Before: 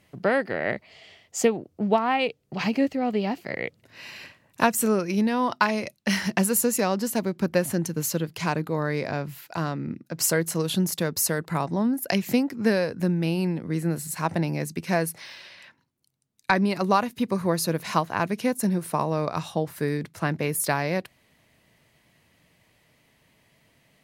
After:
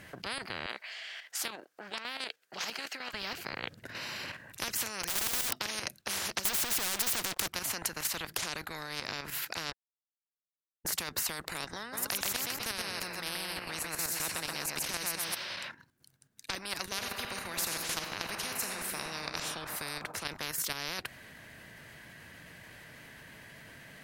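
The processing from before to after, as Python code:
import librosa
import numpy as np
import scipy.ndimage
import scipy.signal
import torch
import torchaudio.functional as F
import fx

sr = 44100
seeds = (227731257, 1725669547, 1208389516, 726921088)

y = fx.highpass(x, sr, hz=1100.0, slope=12, at=(0.66, 3.14))
y = fx.overflow_wrap(y, sr, gain_db=26.0, at=(5.03, 5.59))
y = fx.leveller(y, sr, passes=5, at=(6.45, 7.48))
y = fx.echo_feedback(y, sr, ms=129, feedback_pct=35, wet_db=-4.0, at=(11.92, 15.34), fade=0.02)
y = fx.reverb_throw(y, sr, start_s=16.89, length_s=2.49, rt60_s=1.9, drr_db=6.0)
y = fx.edit(y, sr, fx.silence(start_s=9.72, length_s=1.13), tone=tone)
y = fx.peak_eq(y, sr, hz=1600.0, db=14.0, octaves=0.33)
y = fx.level_steps(y, sr, step_db=9)
y = fx.spectral_comp(y, sr, ratio=10.0)
y = y * 10.0 ** (-5.0 / 20.0)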